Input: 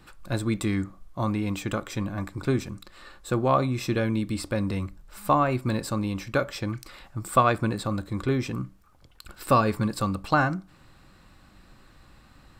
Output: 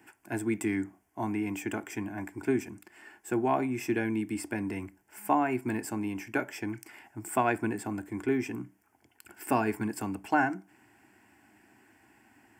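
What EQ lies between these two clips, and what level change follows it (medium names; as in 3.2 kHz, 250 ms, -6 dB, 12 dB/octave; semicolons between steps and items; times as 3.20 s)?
high-pass 120 Hz 24 dB/octave; static phaser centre 800 Hz, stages 8; 0.0 dB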